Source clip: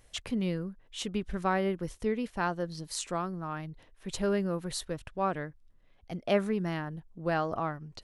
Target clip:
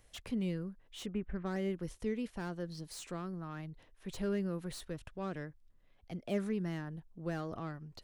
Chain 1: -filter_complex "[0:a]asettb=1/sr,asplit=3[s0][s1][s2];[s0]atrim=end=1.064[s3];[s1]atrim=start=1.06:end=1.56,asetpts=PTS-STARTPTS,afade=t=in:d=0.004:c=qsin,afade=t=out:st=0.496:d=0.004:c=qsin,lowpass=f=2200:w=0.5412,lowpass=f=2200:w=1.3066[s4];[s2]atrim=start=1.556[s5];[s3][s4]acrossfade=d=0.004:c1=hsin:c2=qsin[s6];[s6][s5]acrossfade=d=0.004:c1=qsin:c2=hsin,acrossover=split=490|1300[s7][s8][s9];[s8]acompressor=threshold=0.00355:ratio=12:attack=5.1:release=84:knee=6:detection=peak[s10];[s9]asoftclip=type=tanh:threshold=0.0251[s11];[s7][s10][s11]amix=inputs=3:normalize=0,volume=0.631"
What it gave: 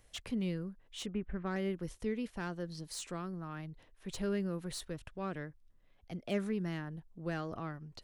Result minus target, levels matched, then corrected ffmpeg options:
saturation: distortion -7 dB
-filter_complex "[0:a]asettb=1/sr,asplit=3[s0][s1][s2];[s0]atrim=end=1.064[s3];[s1]atrim=start=1.06:end=1.56,asetpts=PTS-STARTPTS,afade=t=in:d=0.004:c=qsin,afade=t=out:st=0.496:d=0.004:c=qsin,lowpass=f=2200:w=0.5412,lowpass=f=2200:w=1.3066[s4];[s2]atrim=start=1.556[s5];[s3][s4]acrossfade=d=0.004:c1=hsin:c2=qsin[s6];[s6][s5]acrossfade=d=0.004:c1=qsin:c2=hsin,acrossover=split=490|1300[s7][s8][s9];[s8]acompressor=threshold=0.00355:ratio=12:attack=5.1:release=84:knee=6:detection=peak[s10];[s9]asoftclip=type=tanh:threshold=0.01[s11];[s7][s10][s11]amix=inputs=3:normalize=0,volume=0.631"

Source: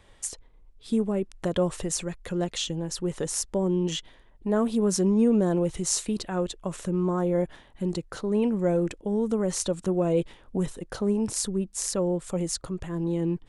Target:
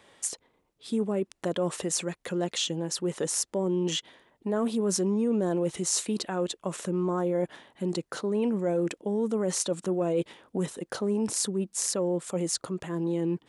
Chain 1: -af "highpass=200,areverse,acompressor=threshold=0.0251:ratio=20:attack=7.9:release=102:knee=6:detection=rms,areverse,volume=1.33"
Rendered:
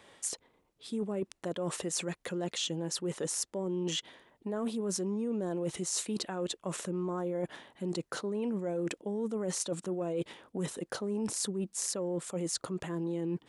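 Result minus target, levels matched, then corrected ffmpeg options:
compression: peak gain reduction +7.5 dB
-af "highpass=200,areverse,acompressor=threshold=0.0631:ratio=20:attack=7.9:release=102:knee=6:detection=rms,areverse,volume=1.33"

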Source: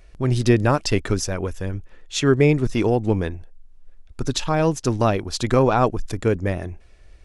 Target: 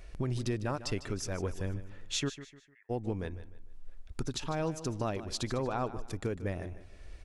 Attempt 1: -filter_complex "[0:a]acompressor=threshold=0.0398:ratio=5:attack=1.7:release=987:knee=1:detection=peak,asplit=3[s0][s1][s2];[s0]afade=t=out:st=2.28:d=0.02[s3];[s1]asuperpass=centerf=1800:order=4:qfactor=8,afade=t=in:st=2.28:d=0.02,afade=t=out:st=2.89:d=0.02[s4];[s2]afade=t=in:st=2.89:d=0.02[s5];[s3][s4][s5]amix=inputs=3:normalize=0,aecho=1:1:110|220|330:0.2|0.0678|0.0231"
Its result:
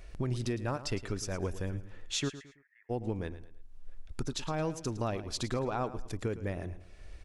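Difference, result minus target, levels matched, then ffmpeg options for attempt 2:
echo 41 ms early
-filter_complex "[0:a]acompressor=threshold=0.0398:ratio=5:attack=1.7:release=987:knee=1:detection=peak,asplit=3[s0][s1][s2];[s0]afade=t=out:st=2.28:d=0.02[s3];[s1]asuperpass=centerf=1800:order=4:qfactor=8,afade=t=in:st=2.28:d=0.02,afade=t=out:st=2.89:d=0.02[s4];[s2]afade=t=in:st=2.89:d=0.02[s5];[s3][s4][s5]amix=inputs=3:normalize=0,aecho=1:1:151|302|453:0.2|0.0678|0.0231"

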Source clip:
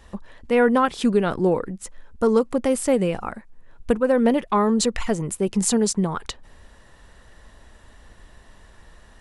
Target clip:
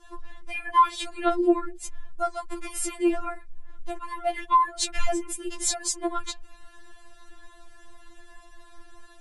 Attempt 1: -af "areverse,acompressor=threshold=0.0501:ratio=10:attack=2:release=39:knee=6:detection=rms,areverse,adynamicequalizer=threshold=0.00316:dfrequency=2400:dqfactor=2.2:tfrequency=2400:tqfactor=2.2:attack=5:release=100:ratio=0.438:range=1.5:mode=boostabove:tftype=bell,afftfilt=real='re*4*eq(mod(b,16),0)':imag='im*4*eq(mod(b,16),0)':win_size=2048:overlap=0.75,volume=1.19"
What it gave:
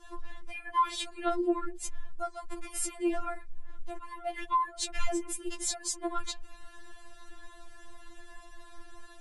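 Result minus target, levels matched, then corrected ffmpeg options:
compression: peak gain reduction +9 dB
-af "areverse,acompressor=threshold=0.158:ratio=10:attack=2:release=39:knee=6:detection=rms,areverse,adynamicequalizer=threshold=0.00316:dfrequency=2400:dqfactor=2.2:tfrequency=2400:tqfactor=2.2:attack=5:release=100:ratio=0.438:range=1.5:mode=boostabove:tftype=bell,afftfilt=real='re*4*eq(mod(b,16),0)':imag='im*4*eq(mod(b,16),0)':win_size=2048:overlap=0.75,volume=1.19"

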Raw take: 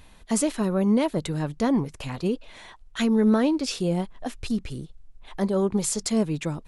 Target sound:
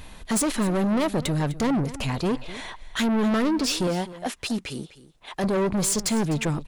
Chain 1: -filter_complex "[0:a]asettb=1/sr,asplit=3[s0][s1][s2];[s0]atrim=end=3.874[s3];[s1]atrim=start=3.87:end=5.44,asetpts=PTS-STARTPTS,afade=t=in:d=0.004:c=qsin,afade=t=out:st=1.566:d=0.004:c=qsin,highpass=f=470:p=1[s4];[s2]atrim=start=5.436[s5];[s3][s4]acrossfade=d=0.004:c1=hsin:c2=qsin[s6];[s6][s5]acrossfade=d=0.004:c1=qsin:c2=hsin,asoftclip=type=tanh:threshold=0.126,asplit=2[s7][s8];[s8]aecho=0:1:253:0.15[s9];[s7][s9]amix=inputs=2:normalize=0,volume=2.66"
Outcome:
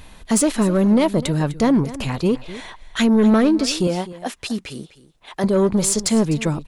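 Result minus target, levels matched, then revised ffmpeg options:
saturation: distortion -10 dB
-filter_complex "[0:a]asettb=1/sr,asplit=3[s0][s1][s2];[s0]atrim=end=3.874[s3];[s1]atrim=start=3.87:end=5.44,asetpts=PTS-STARTPTS,afade=t=in:d=0.004:c=qsin,afade=t=out:st=1.566:d=0.004:c=qsin,highpass=f=470:p=1[s4];[s2]atrim=start=5.436[s5];[s3][s4]acrossfade=d=0.004:c1=hsin:c2=qsin[s6];[s6][s5]acrossfade=d=0.004:c1=qsin:c2=hsin,asoftclip=type=tanh:threshold=0.0355,asplit=2[s7][s8];[s8]aecho=0:1:253:0.15[s9];[s7][s9]amix=inputs=2:normalize=0,volume=2.66"

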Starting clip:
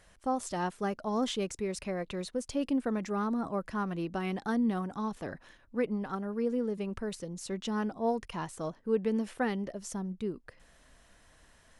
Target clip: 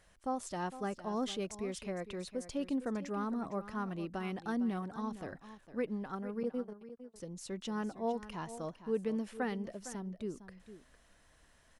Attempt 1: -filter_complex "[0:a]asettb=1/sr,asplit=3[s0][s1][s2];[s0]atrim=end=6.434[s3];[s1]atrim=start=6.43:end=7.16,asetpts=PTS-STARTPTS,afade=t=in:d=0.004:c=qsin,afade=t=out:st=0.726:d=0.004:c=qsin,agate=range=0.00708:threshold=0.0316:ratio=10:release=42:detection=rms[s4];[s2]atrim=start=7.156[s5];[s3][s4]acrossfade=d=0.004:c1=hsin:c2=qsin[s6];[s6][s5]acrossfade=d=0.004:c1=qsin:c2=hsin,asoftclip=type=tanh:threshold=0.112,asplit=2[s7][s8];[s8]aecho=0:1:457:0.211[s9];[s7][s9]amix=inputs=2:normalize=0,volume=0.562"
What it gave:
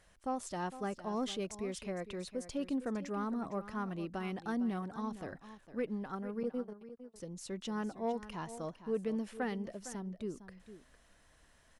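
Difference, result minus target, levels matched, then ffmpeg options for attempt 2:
saturation: distortion +18 dB
-filter_complex "[0:a]asettb=1/sr,asplit=3[s0][s1][s2];[s0]atrim=end=6.434[s3];[s1]atrim=start=6.43:end=7.16,asetpts=PTS-STARTPTS,afade=t=in:d=0.004:c=qsin,afade=t=out:st=0.726:d=0.004:c=qsin,agate=range=0.00708:threshold=0.0316:ratio=10:release=42:detection=rms[s4];[s2]atrim=start=7.156[s5];[s3][s4]acrossfade=d=0.004:c1=hsin:c2=qsin[s6];[s6][s5]acrossfade=d=0.004:c1=qsin:c2=hsin,asoftclip=type=tanh:threshold=0.355,asplit=2[s7][s8];[s8]aecho=0:1:457:0.211[s9];[s7][s9]amix=inputs=2:normalize=0,volume=0.562"

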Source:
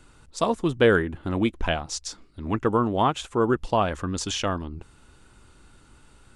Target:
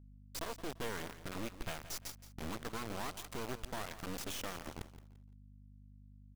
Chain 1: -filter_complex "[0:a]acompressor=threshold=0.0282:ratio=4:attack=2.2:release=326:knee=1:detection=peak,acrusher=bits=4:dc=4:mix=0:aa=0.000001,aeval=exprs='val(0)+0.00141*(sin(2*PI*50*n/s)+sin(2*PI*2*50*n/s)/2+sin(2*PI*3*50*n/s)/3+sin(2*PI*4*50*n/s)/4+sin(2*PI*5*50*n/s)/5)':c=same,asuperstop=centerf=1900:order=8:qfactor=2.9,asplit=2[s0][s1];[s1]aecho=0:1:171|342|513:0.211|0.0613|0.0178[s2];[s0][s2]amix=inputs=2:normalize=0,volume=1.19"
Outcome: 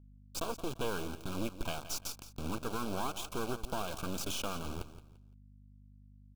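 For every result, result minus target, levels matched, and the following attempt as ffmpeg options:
compression: peak gain reduction -6 dB; 2 kHz band -3.5 dB
-filter_complex "[0:a]acompressor=threshold=0.0112:ratio=4:attack=2.2:release=326:knee=1:detection=peak,acrusher=bits=4:dc=4:mix=0:aa=0.000001,aeval=exprs='val(0)+0.00141*(sin(2*PI*50*n/s)+sin(2*PI*2*50*n/s)/2+sin(2*PI*3*50*n/s)/3+sin(2*PI*4*50*n/s)/4+sin(2*PI*5*50*n/s)/5)':c=same,asuperstop=centerf=1900:order=8:qfactor=2.9,asplit=2[s0][s1];[s1]aecho=0:1:171|342|513:0.211|0.0613|0.0178[s2];[s0][s2]amix=inputs=2:normalize=0,volume=1.19"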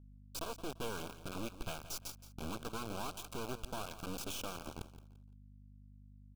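2 kHz band -3.0 dB
-filter_complex "[0:a]acompressor=threshold=0.0112:ratio=4:attack=2.2:release=326:knee=1:detection=peak,acrusher=bits=4:dc=4:mix=0:aa=0.000001,aeval=exprs='val(0)+0.00141*(sin(2*PI*50*n/s)+sin(2*PI*2*50*n/s)/2+sin(2*PI*3*50*n/s)/3+sin(2*PI*4*50*n/s)/4+sin(2*PI*5*50*n/s)/5)':c=same,asplit=2[s0][s1];[s1]aecho=0:1:171|342|513:0.211|0.0613|0.0178[s2];[s0][s2]amix=inputs=2:normalize=0,volume=1.19"

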